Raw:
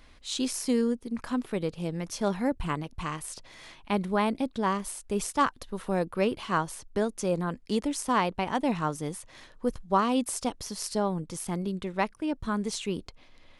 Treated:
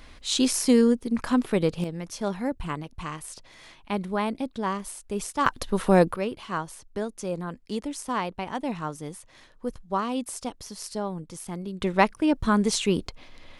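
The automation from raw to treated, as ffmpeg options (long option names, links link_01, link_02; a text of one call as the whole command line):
ffmpeg -i in.wav -af "asetnsamples=nb_out_samples=441:pad=0,asendcmd='1.84 volume volume -1dB;5.46 volume volume 10dB;6.16 volume volume -3dB;11.81 volume volume 8dB',volume=7dB" out.wav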